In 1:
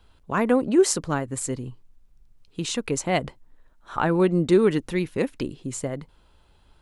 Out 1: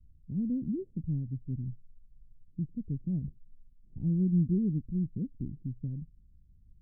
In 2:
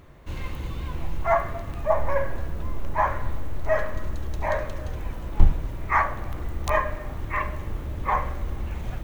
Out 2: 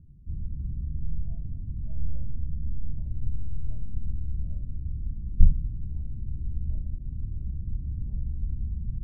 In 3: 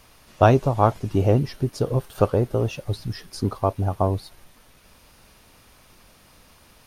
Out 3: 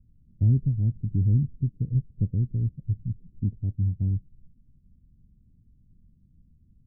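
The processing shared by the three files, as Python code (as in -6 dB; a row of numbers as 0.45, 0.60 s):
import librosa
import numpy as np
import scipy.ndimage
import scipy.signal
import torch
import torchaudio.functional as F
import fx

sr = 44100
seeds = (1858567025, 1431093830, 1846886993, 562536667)

y = scipy.signal.sosfilt(scipy.signal.cheby2(4, 80, 1200.0, 'lowpass', fs=sr, output='sos'), x)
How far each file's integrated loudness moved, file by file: -9.5, -5.5, -4.5 LU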